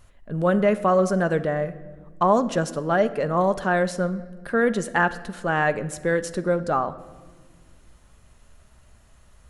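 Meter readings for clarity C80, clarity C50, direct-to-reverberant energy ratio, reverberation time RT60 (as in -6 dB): 17.0 dB, 15.5 dB, 11.0 dB, 1.5 s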